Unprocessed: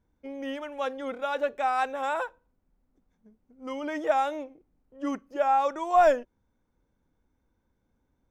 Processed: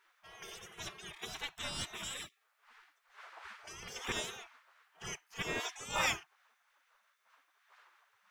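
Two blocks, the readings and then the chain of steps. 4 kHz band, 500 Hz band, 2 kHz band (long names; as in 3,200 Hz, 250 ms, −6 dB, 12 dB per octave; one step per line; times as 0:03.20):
+5.0 dB, −20.5 dB, −4.0 dB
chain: wind on the microphone 230 Hz −44 dBFS
gate on every frequency bin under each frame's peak −30 dB weak
level +9.5 dB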